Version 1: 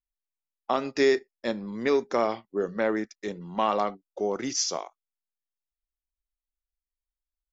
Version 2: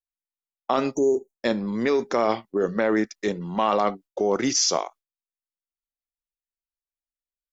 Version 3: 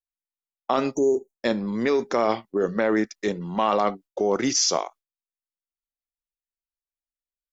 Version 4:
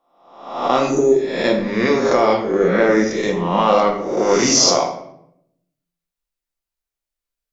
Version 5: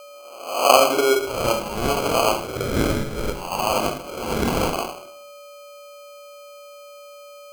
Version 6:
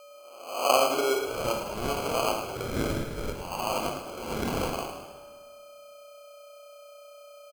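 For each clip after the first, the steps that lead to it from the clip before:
gate with hold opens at -45 dBFS; spectral delete 0.95–1.4, 980–5700 Hz; in parallel at 0 dB: negative-ratio compressor -28 dBFS, ratio -0.5
nothing audible
spectral swells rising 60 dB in 0.75 s; shoebox room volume 170 m³, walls mixed, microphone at 0.8 m; gain +3.5 dB
band-pass sweep 440 Hz -> 2200 Hz, 0.14–2.89; whine 3100 Hz -46 dBFS; sample-and-hold 24×; gain +6.5 dB
on a send: frequency-shifting echo 0.107 s, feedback 52%, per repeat +31 Hz, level -10 dB; on the sum: plate-style reverb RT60 2 s, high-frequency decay 0.65×, DRR 14.5 dB; gain -8.5 dB

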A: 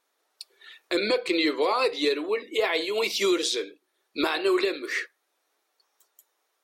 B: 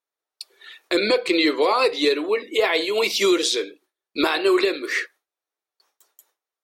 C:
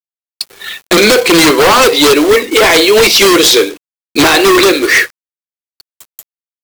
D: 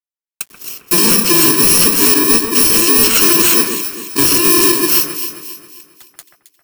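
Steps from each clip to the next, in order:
gate with hold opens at -55 dBFS; gain +5 dB
companded quantiser 4-bit; sine folder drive 11 dB, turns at -6 dBFS; gain +3.5 dB
FFT order left unsorted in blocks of 64 samples; on a send: echo with dull and thin repeats by turns 0.134 s, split 2100 Hz, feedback 63%, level -5.5 dB; on the sum: gain -4 dB

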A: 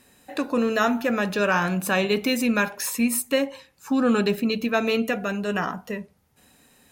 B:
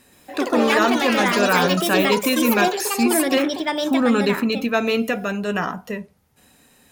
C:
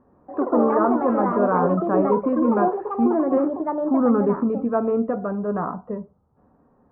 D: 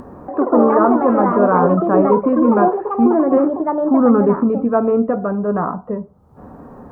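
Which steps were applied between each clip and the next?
echoes that change speed 0.125 s, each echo +5 st, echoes 3; gain +2.5 dB
Chebyshev low-pass 1200 Hz, order 4
upward compressor, threshold -29 dBFS; gain +6 dB

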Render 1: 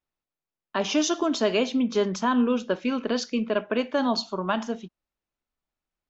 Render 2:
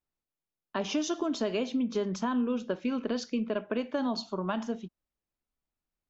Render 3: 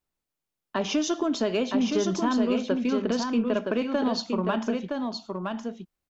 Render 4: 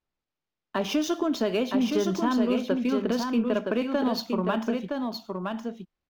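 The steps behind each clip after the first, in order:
low shelf 480 Hz +6 dB; compressor 3:1, threshold -21 dBFS, peak gain reduction 6 dB; gain -6 dB
in parallel at -10.5 dB: hard clip -26 dBFS, distortion -15 dB; on the sum: echo 0.967 s -4.5 dB; gain +2.5 dB
median filter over 5 samples

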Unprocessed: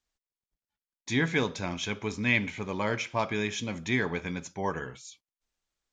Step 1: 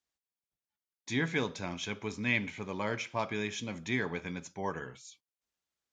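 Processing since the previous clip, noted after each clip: HPF 81 Hz; gain -4.5 dB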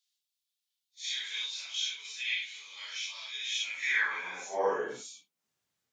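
phase scrambler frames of 0.2 s; in parallel at 0 dB: compressor, threshold -41 dBFS, peak gain reduction 14.5 dB; on the sum: high-pass sweep 3600 Hz -> 110 Hz, 3.45–5.62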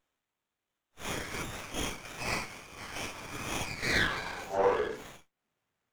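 running maximum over 9 samples; gain +3 dB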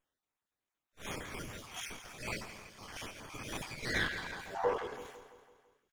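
random spectral dropouts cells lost 28%; feedback echo 0.167 s, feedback 54%, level -12 dB; gain -5 dB

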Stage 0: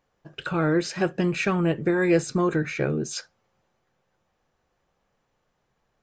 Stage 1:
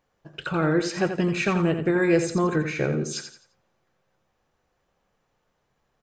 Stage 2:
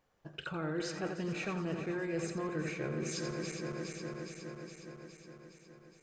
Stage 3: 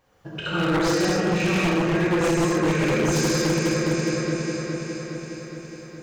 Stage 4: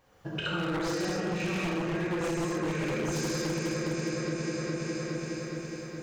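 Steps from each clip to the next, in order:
feedback echo 86 ms, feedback 33%, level -8.5 dB
regenerating reverse delay 0.207 s, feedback 80%, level -11 dB; reverse; compressor 5:1, threshold -32 dBFS, peak gain reduction 15.5 dB; reverse; gain -3 dB
non-linear reverb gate 0.31 s flat, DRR -7.5 dB; wavefolder -24 dBFS; gain +8.5 dB
compressor 6:1, threshold -29 dBFS, peak gain reduction 10 dB

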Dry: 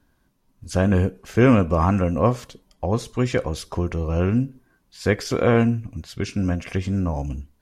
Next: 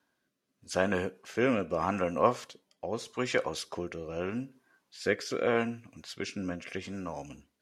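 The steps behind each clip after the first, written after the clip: weighting filter A; rotary speaker horn 0.8 Hz; gain -2 dB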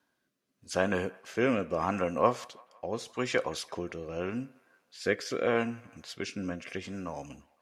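band-limited delay 0.17 s, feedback 54%, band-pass 1300 Hz, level -22 dB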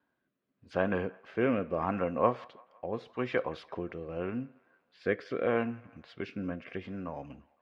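air absorption 390 m

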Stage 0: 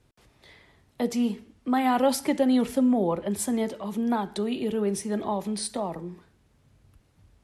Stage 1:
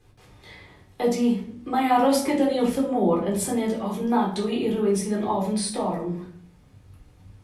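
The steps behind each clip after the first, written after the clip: in parallel at -1 dB: compressor, threshold -34 dBFS, peak gain reduction 16 dB; on the sum: shoebox room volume 410 m³, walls furnished, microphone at 3.9 m; gain -5 dB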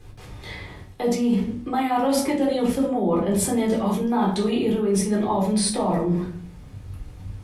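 reverse; compressor 6:1, threshold -28 dBFS, peak gain reduction 13 dB; reverse; low shelf 100 Hz +7.5 dB; gain +8.5 dB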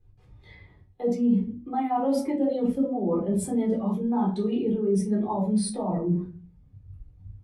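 spectral expander 1.5:1; gain -3 dB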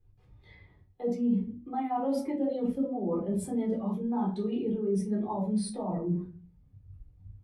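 bell 7900 Hz -3.5 dB 1.1 oct; gain -5 dB

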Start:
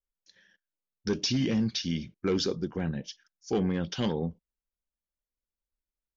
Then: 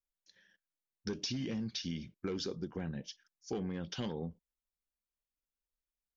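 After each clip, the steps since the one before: compressor, threshold -29 dBFS, peak gain reduction 6.5 dB; gain -5 dB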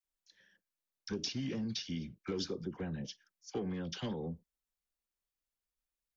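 dispersion lows, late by 45 ms, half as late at 990 Hz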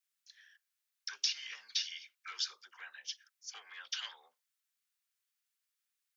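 HPF 1300 Hz 24 dB/oct; gain +6 dB

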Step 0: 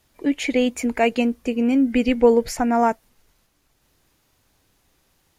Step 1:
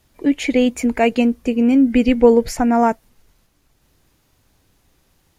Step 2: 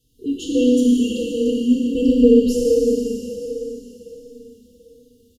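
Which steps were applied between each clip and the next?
low shelf 320 Hz +5.5 dB; gain +1.5 dB
Schroeder reverb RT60 3.9 s, combs from 25 ms, DRR -4 dB; FFT band-reject 520–2700 Hz; endless flanger 4.1 ms -1.4 Hz; gain -2.5 dB

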